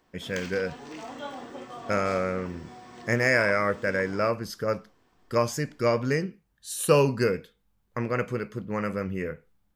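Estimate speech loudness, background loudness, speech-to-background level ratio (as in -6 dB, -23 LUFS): -27.5 LUFS, -42.0 LUFS, 14.5 dB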